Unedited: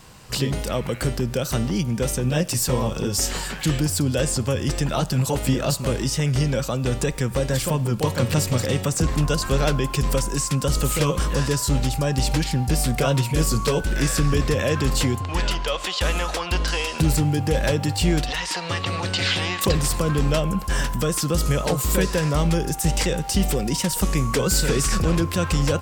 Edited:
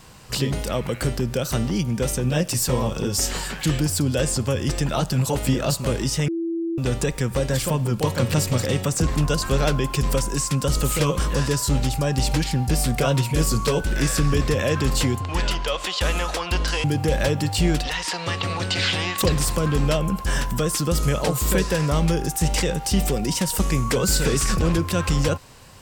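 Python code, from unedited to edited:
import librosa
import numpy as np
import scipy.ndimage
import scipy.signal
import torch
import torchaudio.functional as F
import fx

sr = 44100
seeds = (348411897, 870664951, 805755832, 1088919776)

y = fx.edit(x, sr, fx.bleep(start_s=6.28, length_s=0.5, hz=333.0, db=-22.5),
    fx.cut(start_s=16.84, length_s=0.43), tone=tone)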